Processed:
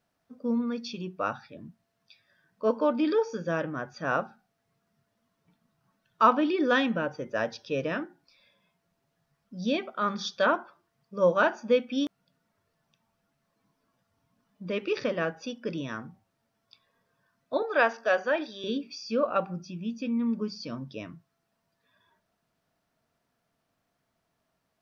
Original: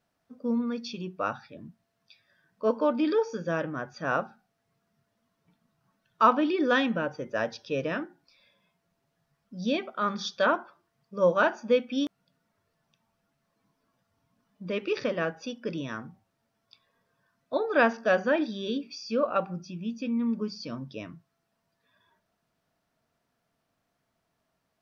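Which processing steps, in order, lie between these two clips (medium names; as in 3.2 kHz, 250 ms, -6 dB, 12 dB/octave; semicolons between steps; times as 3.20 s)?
17.62–18.64 s: high-pass 450 Hz 12 dB/octave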